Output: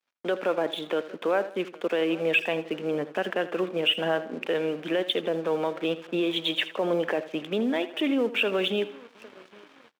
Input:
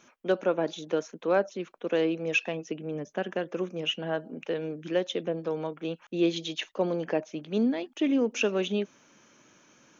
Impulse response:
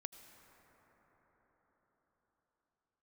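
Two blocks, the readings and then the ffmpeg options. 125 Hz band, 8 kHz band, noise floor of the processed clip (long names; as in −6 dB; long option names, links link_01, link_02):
−2.0 dB, can't be measured, −56 dBFS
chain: -filter_complex "[0:a]aresample=8000,aresample=44100,acompressor=threshold=-28dB:ratio=2,asplit=2[link_01][link_02];[link_02]adelay=808,lowpass=frequency=1600:poles=1,volume=-22.5dB,asplit=2[link_03][link_04];[link_04]adelay=808,lowpass=frequency=1600:poles=1,volume=0.49,asplit=2[link_05][link_06];[link_06]adelay=808,lowpass=frequency=1600:poles=1,volume=0.49[link_07];[link_03][link_05][link_07]amix=inputs=3:normalize=0[link_08];[link_01][link_08]amix=inputs=2:normalize=0,alimiter=level_in=0.5dB:limit=-24dB:level=0:latency=1:release=19,volume=-0.5dB,aeval=exprs='sgn(val(0))*max(abs(val(0))-0.0015,0)':channel_layout=same,acontrast=34,asplit=2[link_09][link_10];[link_10]aecho=0:1:80|160|240:0.178|0.0676|0.0257[link_11];[link_09][link_11]amix=inputs=2:normalize=0,agate=range=-21dB:threshold=-56dB:ratio=16:detection=peak,highpass=frequency=530:poles=1,volume=6dB"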